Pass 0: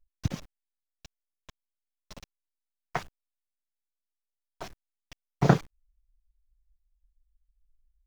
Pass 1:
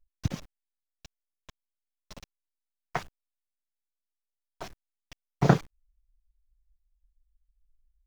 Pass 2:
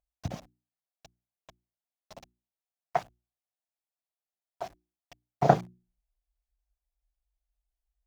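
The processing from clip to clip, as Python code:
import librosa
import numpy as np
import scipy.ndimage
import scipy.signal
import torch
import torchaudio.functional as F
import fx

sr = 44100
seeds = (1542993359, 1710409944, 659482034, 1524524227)

y1 = x
y2 = scipy.signal.sosfilt(scipy.signal.butter(2, 49.0, 'highpass', fs=sr, output='sos'), y1)
y2 = fx.peak_eq(y2, sr, hz=700.0, db=13.5, octaves=0.69)
y2 = fx.hum_notches(y2, sr, base_hz=60, count=6)
y2 = F.gain(torch.from_numpy(y2), -5.0).numpy()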